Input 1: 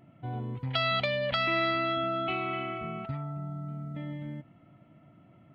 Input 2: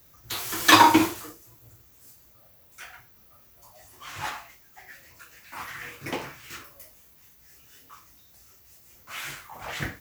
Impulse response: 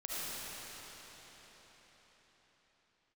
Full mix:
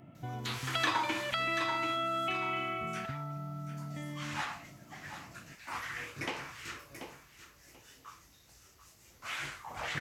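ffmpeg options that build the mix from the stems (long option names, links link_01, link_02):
-filter_complex "[0:a]volume=2.5dB[link_01];[1:a]lowpass=9100,adelay=150,volume=-1.5dB,asplit=2[link_02][link_03];[link_03]volume=-13dB,aecho=0:1:735|1470|2205:1|0.18|0.0324[link_04];[link_01][link_02][link_04]amix=inputs=3:normalize=0,acrossover=split=1000|3700[link_05][link_06][link_07];[link_05]acompressor=threshold=-40dB:ratio=4[link_08];[link_06]acompressor=threshold=-33dB:ratio=4[link_09];[link_07]acompressor=threshold=-49dB:ratio=4[link_10];[link_08][link_09][link_10]amix=inputs=3:normalize=0"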